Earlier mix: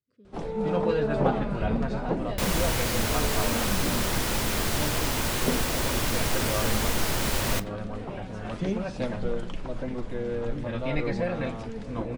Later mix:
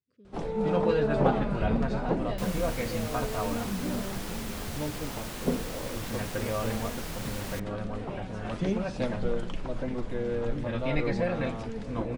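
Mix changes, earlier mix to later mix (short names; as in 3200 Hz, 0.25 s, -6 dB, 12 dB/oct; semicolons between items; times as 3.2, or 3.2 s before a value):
second sound -10.0 dB; reverb: off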